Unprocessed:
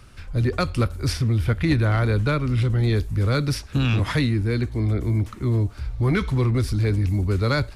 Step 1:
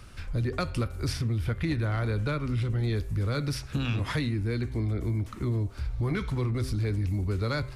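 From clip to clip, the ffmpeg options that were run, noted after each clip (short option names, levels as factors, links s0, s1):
-af "bandreject=f=130.5:t=h:w=4,bandreject=f=261:t=h:w=4,bandreject=f=391.5:t=h:w=4,bandreject=f=522:t=h:w=4,bandreject=f=652.5:t=h:w=4,bandreject=f=783:t=h:w=4,bandreject=f=913.5:t=h:w=4,bandreject=f=1044:t=h:w=4,bandreject=f=1174.5:t=h:w=4,bandreject=f=1305:t=h:w=4,bandreject=f=1435.5:t=h:w=4,bandreject=f=1566:t=h:w=4,bandreject=f=1696.5:t=h:w=4,bandreject=f=1827:t=h:w=4,bandreject=f=1957.5:t=h:w=4,bandreject=f=2088:t=h:w=4,bandreject=f=2218.5:t=h:w=4,bandreject=f=2349:t=h:w=4,bandreject=f=2479.5:t=h:w=4,bandreject=f=2610:t=h:w=4,bandreject=f=2740.5:t=h:w=4,bandreject=f=2871:t=h:w=4,acompressor=threshold=0.0398:ratio=3"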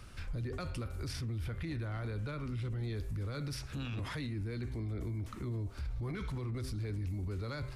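-af "alimiter=level_in=1.78:limit=0.0631:level=0:latency=1:release=12,volume=0.562,volume=0.668"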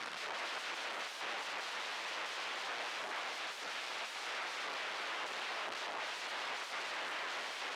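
-af "aeval=exprs='(mod(251*val(0)+1,2)-1)/251':c=same,highpass=580,lowpass=3600,volume=5.62"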